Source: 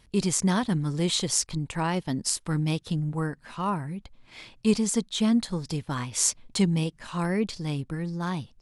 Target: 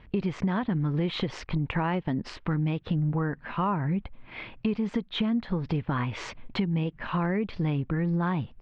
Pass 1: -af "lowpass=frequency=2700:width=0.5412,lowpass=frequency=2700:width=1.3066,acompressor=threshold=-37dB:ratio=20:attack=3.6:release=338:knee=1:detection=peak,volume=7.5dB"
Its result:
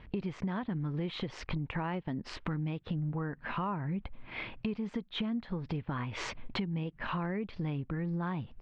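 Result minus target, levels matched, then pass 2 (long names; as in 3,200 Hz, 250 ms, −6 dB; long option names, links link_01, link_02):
downward compressor: peak gain reduction +7.5 dB
-af "lowpass=frequency=2700:width=0.5412,lowpass=frequency=2700:width=1.3066,acompressor=threshold=-29dB:ratio=20:attack=3.6:release=338:knee=1:detection=peak,volume=7.5dB"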